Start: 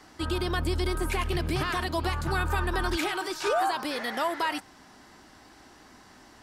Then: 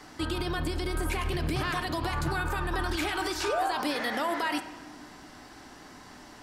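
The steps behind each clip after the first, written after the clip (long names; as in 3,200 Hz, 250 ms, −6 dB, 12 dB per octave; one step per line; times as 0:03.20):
brickwall limiter −25 dBFS, peak gain reduction 8 dB
on a send at −8 dB: convolution reverb RT60 1.3 s, pre-delay 7 ms
on the sum: level +3.5 dB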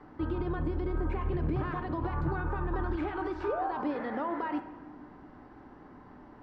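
low-pass filter 1,000 Hz 12 dB per octave
parametric band 670 Hz −6 dB 0.29 octaves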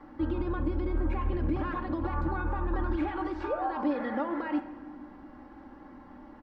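comb filter 3.6 ms, depth 68%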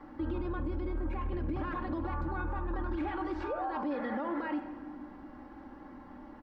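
brickwall limiter −27 dBFS, peak gain reduction 8 dB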